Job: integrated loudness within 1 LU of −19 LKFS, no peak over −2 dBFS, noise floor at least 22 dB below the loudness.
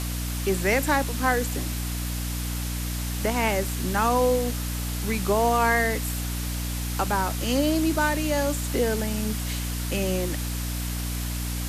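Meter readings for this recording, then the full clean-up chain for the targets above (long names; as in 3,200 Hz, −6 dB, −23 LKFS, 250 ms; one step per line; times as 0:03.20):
mains hum 60 Hz; hum harmonics up to 300 Hz; level of the hum −27 dBFS; background noise floor −29 dBFS; target noise floor −48 dBFS; integrated loudness −25.5 LKFS; sample peak −10.5 dBFS; target loudness −19.0 LKFS
→ hum removal 60 Hz, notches 5
noise reduction from a noise print 19 dB
level +6.5 dB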